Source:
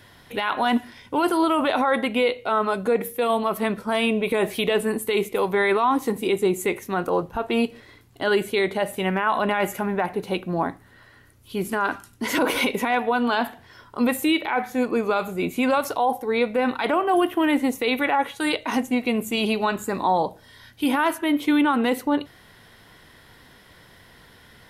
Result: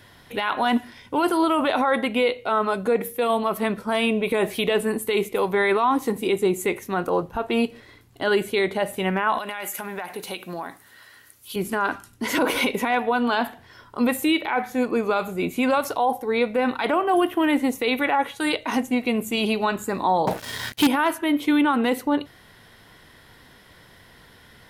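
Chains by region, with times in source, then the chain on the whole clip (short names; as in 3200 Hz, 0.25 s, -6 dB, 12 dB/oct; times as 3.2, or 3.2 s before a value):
9.38–11.56 tilt +3.5 dB/oct + compressor, threshold -27 dBFS
20.27–20.87 HPF 94 Hz + sample leveller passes 5 + mismatched tape noise reduction encoder only
whole clip: dry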